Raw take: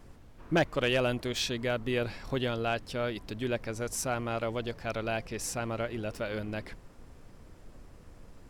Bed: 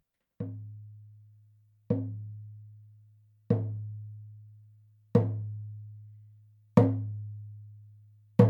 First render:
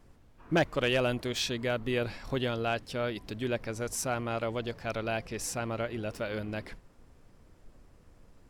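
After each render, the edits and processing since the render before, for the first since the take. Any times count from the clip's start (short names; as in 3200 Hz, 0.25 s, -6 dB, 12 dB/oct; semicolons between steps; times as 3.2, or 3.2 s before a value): noise print and reduce 6 dB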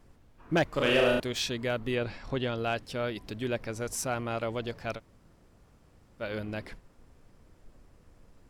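0.7–1.2 flutter echo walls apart 6.2 m, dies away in 0.83 s; 1.95–2.58 air absorption 63 m; 4.97–6.21 room tone, crossfade 0.06 s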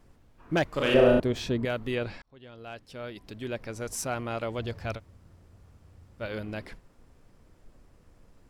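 0.94–1.65 tilt shelf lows +8 dB, about 1300 Hz; 2.22–4 fade in; 4.58–6.26 bell 86 Hz +13 dB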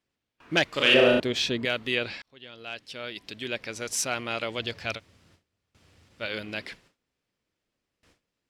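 weighting filter D; gate with hold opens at -49 dBFS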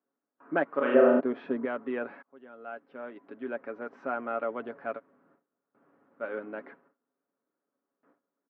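elliptic band-pass 220–1400 Hz, stop band 80 dB; comb 7.2 ms, depth 46%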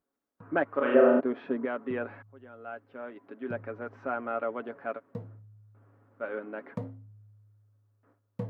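add bed -16 dB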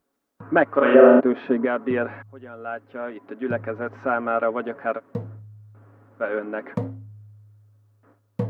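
gain +9.5 dB; limiter -2 dBFS, peak gain reduction 3 dB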